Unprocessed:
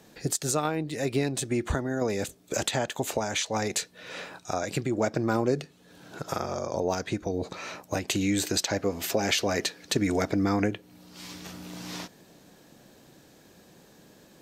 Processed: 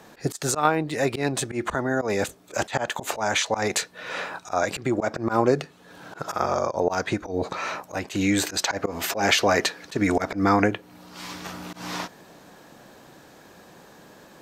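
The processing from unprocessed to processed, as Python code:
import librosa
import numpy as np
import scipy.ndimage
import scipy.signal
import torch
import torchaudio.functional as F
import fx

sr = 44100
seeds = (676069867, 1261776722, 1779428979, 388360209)

y = fx.peak_eq(x, sr, hz=1100.0, db=9.5, octaves=2.0)
y = fx.auto_swell(y, sr, attack_ms=105.0)
y = y * librosa.db_to_amplitude(2.5)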